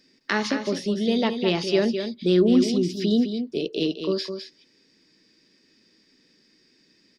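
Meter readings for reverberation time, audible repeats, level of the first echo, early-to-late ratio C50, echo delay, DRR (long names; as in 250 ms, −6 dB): no reverb audible, 1, −8.0 dB, no reverb audible, 209 ms, no reverb audible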